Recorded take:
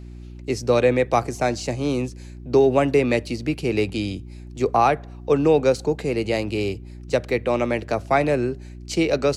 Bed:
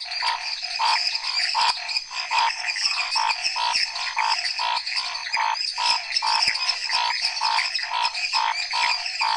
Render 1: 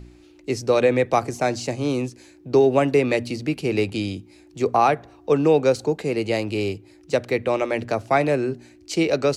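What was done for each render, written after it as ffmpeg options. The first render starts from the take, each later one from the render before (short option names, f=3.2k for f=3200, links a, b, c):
-af "bandreject=f=60:t=h:w=4,bandreject=f=120:t=h:w=4,bandreject=f=180:t=h:w=4,bandreject=f=240:t=h:w=4"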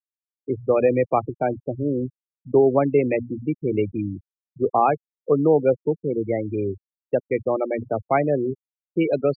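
-af "afftfilt=real='re*gte(hypot(re,im),0.141)':imag='im*gte(hypot(re,im),0.141)':win_size=1024:overlap=0.75,highshelf=f=2.1k:g=-6"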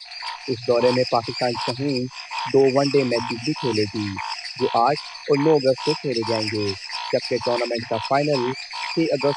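-filter_complex "[1:a]volume=-7dB[a];[0:a][a]amix=inputs=2:normalize=0"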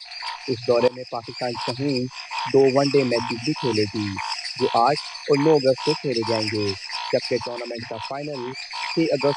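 -filter_complex "[0:a]asettb=1/sr,asplit=3[a][b][c];[a]atrim=end=4.114[d];[b]atrim=start=4.11:end=5.61,asetpts=PTS-STARTPTS,afade=t=in:d=0.004:c=qsin,afade=t=out:st=1.496:d=0.004:c=qsin,highshelf=f=8.9k:g=11.5[e];[c]atrim=start=5.606[f];[d][e]acrossfade=d=0.004:c1=hsin:c2=qsin[g];[g][f]acrossfade=d=0.004:c1=qsin:c2=hsin,asettb=1/sr,asplit=3[h][i][j];[h]atrim=end=7.374[k];[i]atrim=start=7.37:end=8.68,asetpts=PTS-STARTPTS,afade=t=in:d=0.004:c=qsin,afade=t=out:st=1.306:d=0.004:c=qsin,acompressor=threshold=-26dB:ratio=6:attack=3.2:release=140:knee=1:detection=peak[l];[j]atrim=start=8.676[m];[k][l]acrossfade=d=0.004:c1=hsin:c2=qsin[n];[n][m]acrossfade=d=0.004:c1=qsin:c2=hsin,asplit=2[o][p];[o]atrim=end=0.88,asetpts=PTS-STARTPTS,afade=t=out:st=0.876:d=0.004:c=hsin:silence=0.0794328[q];[p]atrim=start=0.88,asetpts=PTS-STARTPTS,afade=t=in:d=0.98:silence=0.0794328[r];[q][r]concat=n=2:v=0:a=1"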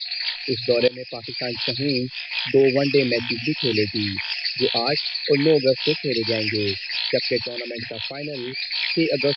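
-af "firequalizer=gain_entry='entry(530,0);entry(1000,-19);entry(1600,2);entry(4300,13);entry(6400,-27)':delay=0.05:min_phase=1"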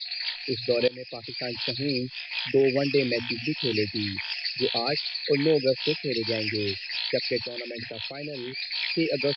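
-af "volume=-5dB"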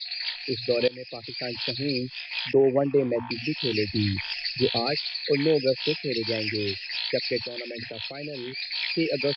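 -filter_complex "[0:a]asettb=1/sr,asplit=3[a][b][c];[a]atrim=end=2.534[d];[b]atrim=start=2.53:end=3.31,asetpts=PTS-STARTPTS,afade=t=in:d=0.004:c=qsin,afade=t=out:st=0.776:d=0.004:c=qsin,lowpass=f=1k:t=q:w=4.1[e];[c]atrim=start=3.306[f];[d][e]acrossfade=d=0.004:c1=hsin:c2=qsin[g];[g][f]acrossfade=d=0.004:c1=qsin:c2=hsin,asettb=1/sr,asplit=3[h][i][j];[h]atrim=end=3.894[k];[i]atrim=start=3.89:end=4.87,asetpts=PTS-STARTPTS,afade=t=in:d=0.004:c=qsin,afade=t=out:st=0.976:d=0.004:c=qsin,lowshelf=f=210:g=12[l];[j]atrim=start=4.866[m];[k][l]acrossfade=d=0.004:c1=hsin:c2=qsin[n];[n][m]acrossfade=d=0.004:c1=qsin:c2=hsin"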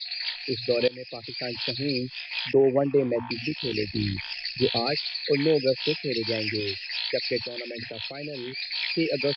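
-filter_complex "[0:a]asplit=3[a][b][c];[a]afade=t=out:st=3.48:d=0.02[d];[b]tremolo=f=62:d=0.519,afade=t=in:st=3.48:d=0.02,afade=t=out:st=4.6:d=0.02[e];[c]afade=t=in:st=4.6:d=0.02[f];[d][e][f]amix=inputs=3:normalize=0,asettb=1/sr,asplit=3[g][h][i];[g]atrim=end=6.604[j];[h]atrim=start=6.6:end=7.25,asetpts=PTS-STARTPTS,afade=t=in:d=0.004:c=qsin,afade=t=out:st=0.646:d=0.004:c=qsin,equalizer=f=180:t=o:w=0.77:g=-15[k];[i]atrim=start=7.246[l];[j][k]acrossfade=d=0.004:c1=hsin:c2=qsin[m];[m][l]acrossfade=d=0.004:c1=qsin:c2=hsin"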